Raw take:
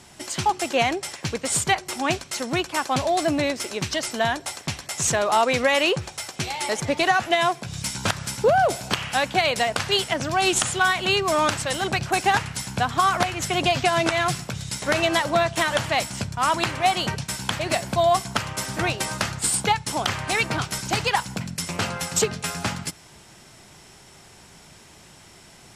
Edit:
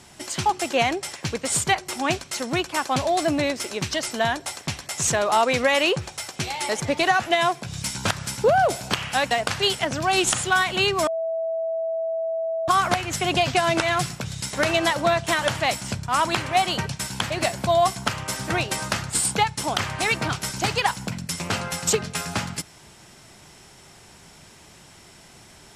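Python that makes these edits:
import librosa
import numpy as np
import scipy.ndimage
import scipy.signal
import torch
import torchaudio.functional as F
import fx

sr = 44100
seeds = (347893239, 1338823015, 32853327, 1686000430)

y = fx.edit(x, sr, fx.cut(start_s=9.31, length_s=0.29),
    fx.bleep(start_s=11.36, length_s=1.61, hz=654.0, db=-23.0), tone=tone)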